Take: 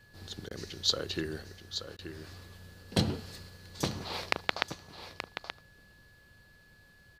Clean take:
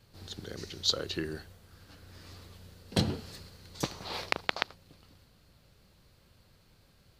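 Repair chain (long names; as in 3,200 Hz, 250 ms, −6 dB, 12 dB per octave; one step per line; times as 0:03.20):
notch filter 1,700 Hz, Q 30
repair the gap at 0:00.49/0:01.97, 17 ms
echo removal 878 ms −9.5 dB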